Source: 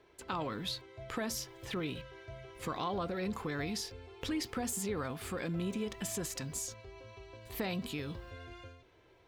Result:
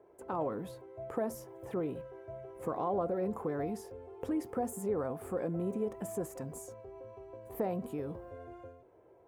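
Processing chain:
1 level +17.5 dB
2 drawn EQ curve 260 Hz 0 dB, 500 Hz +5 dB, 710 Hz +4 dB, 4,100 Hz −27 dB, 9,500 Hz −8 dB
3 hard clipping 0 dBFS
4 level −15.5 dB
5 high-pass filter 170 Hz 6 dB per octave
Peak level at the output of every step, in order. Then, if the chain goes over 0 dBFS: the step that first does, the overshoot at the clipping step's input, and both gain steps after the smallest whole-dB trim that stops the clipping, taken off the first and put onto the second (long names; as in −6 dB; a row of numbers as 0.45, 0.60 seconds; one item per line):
−3.5, −4.5, −4.5, −20.0, −21.5 dBFS
no step passes full scale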